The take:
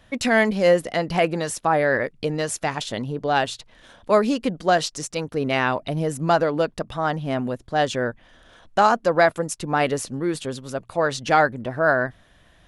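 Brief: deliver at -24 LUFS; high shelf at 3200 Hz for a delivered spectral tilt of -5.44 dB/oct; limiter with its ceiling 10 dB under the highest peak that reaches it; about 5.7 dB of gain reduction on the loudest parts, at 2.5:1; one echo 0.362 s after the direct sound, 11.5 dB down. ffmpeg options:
-af "highshelf=f=3.2k:g=-8,acompressor=threshold=-21dB:ratio=2.5,alimiter=limit=-20dB:level=0:latency=1,aecho=1:1:362:0.266,volume=6.5dB"

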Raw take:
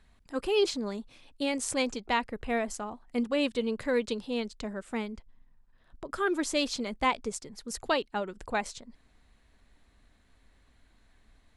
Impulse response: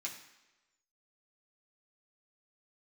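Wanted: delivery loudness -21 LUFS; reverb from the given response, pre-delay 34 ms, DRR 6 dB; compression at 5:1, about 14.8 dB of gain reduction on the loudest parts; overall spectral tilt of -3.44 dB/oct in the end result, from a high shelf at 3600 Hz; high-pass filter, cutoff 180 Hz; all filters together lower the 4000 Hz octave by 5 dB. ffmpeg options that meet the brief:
-filter_complex "[0:a]highpass=180,highshelf=f=3.6k:g=-5,equalizer=f=4k:t=o:g=-3.5,acompressor=threshold=-39dB:ratio=5,asplit=2[a][b];[1:a]atrim=start_sample=2205,adelay=34[c];[b][c]afir=irnorm=-1:irlink=0,volume=-5.5dB[d];[a][d]amix=inputs=2:normalize=0,volume=22dB"

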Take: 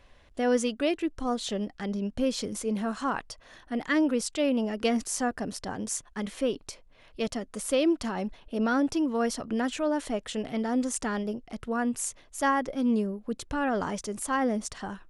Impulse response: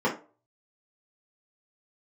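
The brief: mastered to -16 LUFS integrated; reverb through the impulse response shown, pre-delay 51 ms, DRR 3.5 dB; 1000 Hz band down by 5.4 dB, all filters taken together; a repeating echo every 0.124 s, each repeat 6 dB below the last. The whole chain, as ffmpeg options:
-filter_complex "[0:a]equalizer=f=1k:t=o:g=-7.5,aecho=1:1:124|248|372|496|620|744:0.501|0.251|0.125|0.0626|0.0313|0.0157,asplit=2[a][b];[1:a]atrim=start_sample=2205,adelay=51[c];[b][c]afir=irnorm=-1:irlink=0,volume=-17dB[d];[a][d]amix=inputs=2:normalize=0,volume=10dB"

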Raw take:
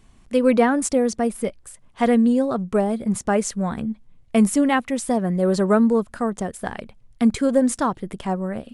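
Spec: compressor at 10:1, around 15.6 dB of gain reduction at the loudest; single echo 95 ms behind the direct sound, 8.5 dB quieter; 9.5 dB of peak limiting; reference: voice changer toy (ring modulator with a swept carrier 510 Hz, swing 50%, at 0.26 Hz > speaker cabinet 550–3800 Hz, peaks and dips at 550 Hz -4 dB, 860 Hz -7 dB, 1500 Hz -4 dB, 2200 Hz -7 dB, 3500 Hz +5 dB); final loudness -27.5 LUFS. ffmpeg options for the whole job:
-af "acompressor=threshold=-28dB:ratio=10,alimiter=level_in=0.5dB:limit=-24dB:level=0:latency=1,volume=-0.5dB,aecho=1:1:95:0.376,aeval=exprs='val(0)*sin(2*PI*510*n/s+510*0.5/0.26*sin(2*PI*0.26*n/s))':c=same,highpass=550,equalizer=f=550:t=q:w=4:g=-4,equalizer=f=860:t=q:w=4:g=-7,equalizer=f=1.5k:t=q:w=4:g=-4,equalizer=f=2.2k:t=q:w=4:g=-7,equalizer=f=3.5k:t=q:w=4:g=5,lowpass=f=3.8k:w=0.5412,lowpass=f=3.8k:w=1.3066,volume=16dB"

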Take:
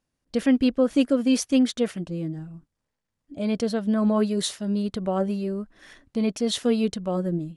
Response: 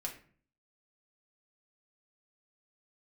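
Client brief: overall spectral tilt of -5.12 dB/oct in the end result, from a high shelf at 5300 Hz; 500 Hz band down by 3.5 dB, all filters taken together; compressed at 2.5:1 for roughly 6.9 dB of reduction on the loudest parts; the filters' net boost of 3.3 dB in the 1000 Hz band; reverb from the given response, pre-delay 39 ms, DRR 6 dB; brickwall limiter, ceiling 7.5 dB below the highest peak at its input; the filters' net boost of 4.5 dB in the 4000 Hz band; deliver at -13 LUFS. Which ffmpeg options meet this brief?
-filter_complex "[0:a]equalizer=f=500:t=o:g=-5.5,equalizer=f=1k:t=o:g=6,equalizer=f=4k:t=o:g=3.5,highshelf=f=5.3k:g=4,acompressor=threshold=-27dB:ratio=2.5,alimiter=limit=-23.5dB:level=0:latency=1,asplit=2[a][b];[1:a]atrim=start_sample=2205,adelay=39[c];[b][c]afir=irnorm=-1:irlink=0,volume=-5.5dB[d];[a][d]amix=inputs=2:normalize=0,volume=18.5dB"

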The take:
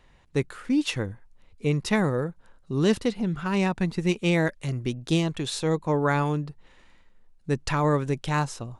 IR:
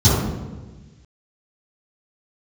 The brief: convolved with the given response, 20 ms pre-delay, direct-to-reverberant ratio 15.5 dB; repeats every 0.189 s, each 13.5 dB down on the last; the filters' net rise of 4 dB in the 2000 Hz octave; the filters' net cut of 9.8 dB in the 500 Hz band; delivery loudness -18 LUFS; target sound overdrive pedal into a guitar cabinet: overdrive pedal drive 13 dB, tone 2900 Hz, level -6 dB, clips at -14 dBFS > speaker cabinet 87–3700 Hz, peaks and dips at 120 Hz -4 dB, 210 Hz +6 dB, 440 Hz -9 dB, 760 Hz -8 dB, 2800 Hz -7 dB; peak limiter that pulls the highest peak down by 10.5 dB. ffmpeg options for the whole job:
-filter_complex "[0:a]equalizer=f=500:t=o:g=-6.5,equalizer=f=2k:t=o:g=7,alimiter=limit=-19dB:level=0:latency=1,aecho=1:1:189|378:0.211|0.0444,asplit=2[a][b];[1:a]atrim=start_sample=2205,adelay=20[c];[b][c]afir=irnorm=-1:irlink=0,volume=-37dB[d];[a][d]amix=inputs=2:normalize=0,asplit=2[e][f];[f]highpass=f=720:p=1,volume=13dB,asoftclip=type=tanh:threshold=-14dB[g];[e][g]amix=inputs=2:normalize=0,lowpass=f=2.9k:p=1,volume=-6dB,highpass=87,equalizer=f=120:t=q:w=4:g=-4,equalizer=f=210:t=q:w=4:g=6,equalizer=f=440:t=q:w=4:g=-9,equalizer=f=760:t=q:w=4:g=-8,equalizer=f=2.8k:t=q:w=4:g=-7,lowpass=f=3.7k:w=0.5412,lowpass=f=3.7k:w=1.3066,volume=10.5dB"

